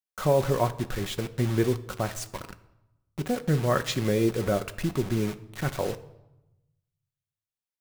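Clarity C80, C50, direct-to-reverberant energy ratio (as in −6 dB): 19.0 dB, 16.5 dB, 9.0 dB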